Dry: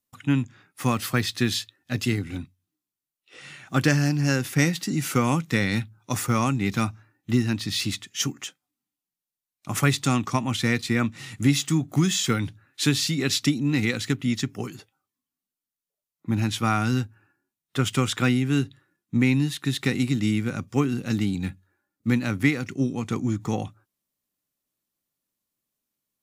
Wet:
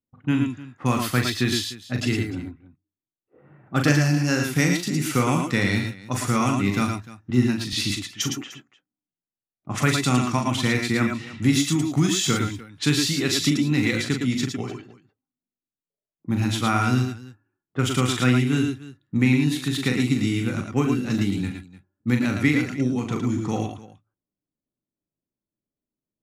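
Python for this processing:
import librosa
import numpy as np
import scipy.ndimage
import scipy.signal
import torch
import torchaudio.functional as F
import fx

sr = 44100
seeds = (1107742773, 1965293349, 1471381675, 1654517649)

y = fx.env_lowpass(x, sr, base_hz=500.0, full_db=-22.5)
y = fx.lowpass(y, sr, hz=1500.0, slope=12, at=(2.21, 3.67))
y = fx.echo_multitap(y, sr, ms=(40, 110, 113, 300), db=(-6.0, -6.0, -9.0, -18.0))
y = fx.band_widen(y, sr, depth_pct=70, at=(7.3, 7.73))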